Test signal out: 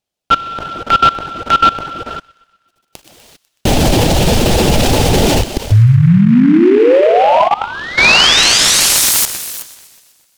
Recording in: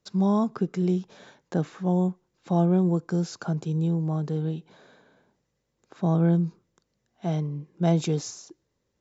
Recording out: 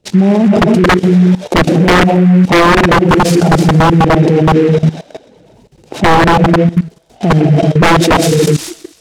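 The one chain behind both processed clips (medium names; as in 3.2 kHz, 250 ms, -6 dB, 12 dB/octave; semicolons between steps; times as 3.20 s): dynamic bell 1 kHz, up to -6 dB, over -36 dBFS, Q 1.2; level rider gain up to 4 dB; low-pass 3 kHz 6 dB/octave; gated-style reverb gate 420 ms flat, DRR 2 dB; reverb removal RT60 0.6 s; high-order bell 1.5 kHz -15.5 dB 1.3 oct; level held to a coarse grid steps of 19 dB; feedback echo behind a high-pass 124 ms, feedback 62%, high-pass 1.8 kHz, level -20 dB; wavefolder -27.5 dBFS; loudness maximiser +34 dB; delay time shaken by noise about 1.6 kHz, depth 0.035 ms; trim -1 dB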